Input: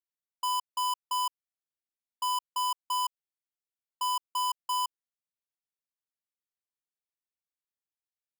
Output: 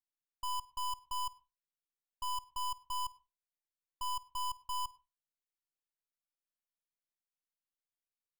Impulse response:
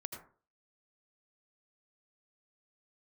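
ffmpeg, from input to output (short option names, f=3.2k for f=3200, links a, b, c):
-filter_complex "[0:a]aeval=exprs='if(lt(val(0),0),0.251*val(0),val(0))':c=same,asplit=2[a][b];[1:a]atrim=start_sample=2205,asetrate=74970,aresample=44100,adelay=53[c];[b][c]afir=irnorm=-1:irlink=0,volume=-14dB[d];[a][d]amix=inputs=2:normalize=0,volume=-4.5dB"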